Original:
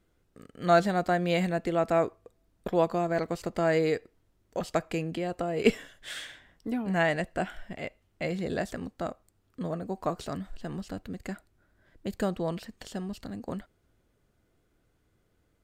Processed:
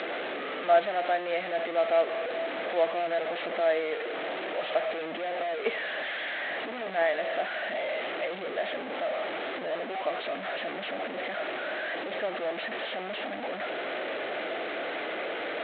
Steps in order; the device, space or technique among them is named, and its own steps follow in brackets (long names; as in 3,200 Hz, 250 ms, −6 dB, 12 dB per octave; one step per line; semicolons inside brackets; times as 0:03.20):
0:03.60–0:05.59: elliptic band-pass filter 120–5,300 Hz
digital answering machine (band-pass filter 390–3,300 Hz; linear delta modulator 16 kbit/s, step −25 dBFS; loudspeaker in its box 400–4,300 Hz, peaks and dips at 410 Hz −3 dB, 630 Hz +5 dB, 1,000 Hz −9 dB, 1,400 Hz −4 dB, 2,700 Hz −4 dB, 4,000 Hz +10 dB)